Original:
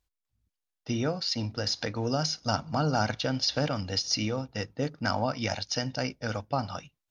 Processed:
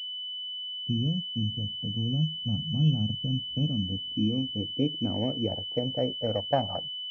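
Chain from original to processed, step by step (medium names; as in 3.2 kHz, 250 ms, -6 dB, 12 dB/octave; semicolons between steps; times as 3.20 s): spectral noise reduction 17 dB; low-pass sweep 180 Hz -> 690 Hz, 3.27–6.75 s; class-D stage that switches slowly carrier 3 kHz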